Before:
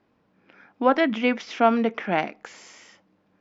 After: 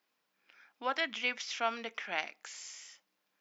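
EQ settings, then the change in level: differentiator; +4.5 dB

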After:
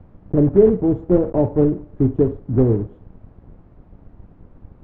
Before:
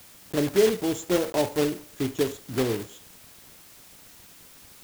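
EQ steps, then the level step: LPF 1000 Hz 12 dB/oct; tilt -4.5 dB/oct; +2.0 dB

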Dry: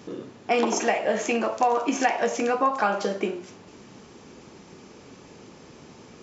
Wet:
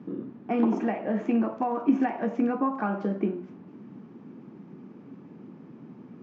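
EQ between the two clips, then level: HPF 140 Hz 24 dB/oct; LPF 1500 Hz 12 dB/oct; resonant low shelf 360 Hz +9 dB, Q 1.5; -5.5 dB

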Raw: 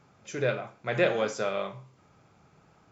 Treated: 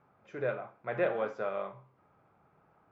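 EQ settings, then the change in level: LPF 1300 Hz 12 dB/oct; low shelf 450 Hz -10.5 dB; 0.0 dB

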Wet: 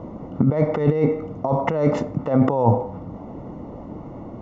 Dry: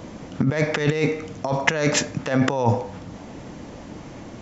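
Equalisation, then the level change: polynomial smoothing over 65 samples; +3.0 dB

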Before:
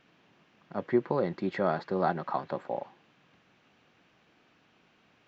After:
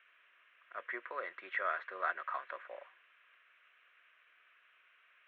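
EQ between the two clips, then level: HPF 790 Hz 24 dB/oct; air absorption 260 m; fixed phaser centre 2000 Hz, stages 4; +6.0 dB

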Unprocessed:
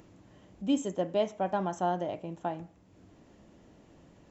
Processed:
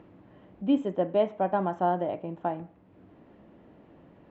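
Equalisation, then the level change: air absorption 490 m; low shelf 110 Hz -11 dB; +6.0 dB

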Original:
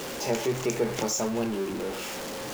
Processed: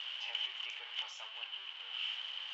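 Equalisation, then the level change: HPF 860 Hz 24 dB/oct; ladder low-pass 3100 Hz, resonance 90%; tilt +2 dB/oct; -3.0 dB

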